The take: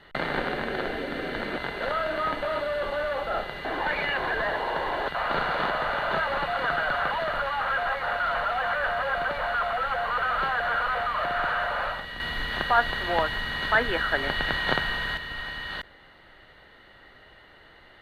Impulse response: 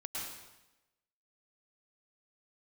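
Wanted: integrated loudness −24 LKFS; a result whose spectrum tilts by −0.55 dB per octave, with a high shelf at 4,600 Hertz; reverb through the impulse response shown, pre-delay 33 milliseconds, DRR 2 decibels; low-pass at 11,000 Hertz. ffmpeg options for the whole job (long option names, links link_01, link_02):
-filter_complex "[0:a]lowpass=11000,highshelf=frequency=4600:gain=8,asplit=2[link_01][link_02];[1:a]atrim=start_sample=2205,adelay=33[link_03];[link_02][link_03]afir=irnorm=-1:irlink=0,volume=-3dB[link_04];[link_01][link_04]amix=inputs=2:normalize=0"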